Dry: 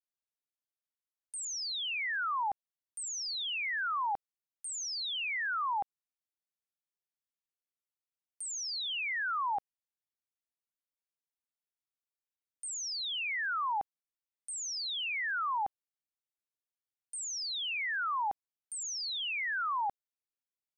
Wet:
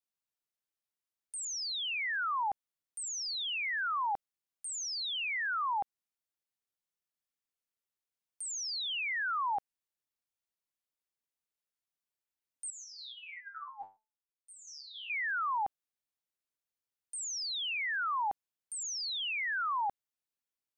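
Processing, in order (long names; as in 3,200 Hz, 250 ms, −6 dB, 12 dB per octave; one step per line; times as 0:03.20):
0:12.70–0:15.10: step-sequenced resonator 7.1 Hz 97–400 Hz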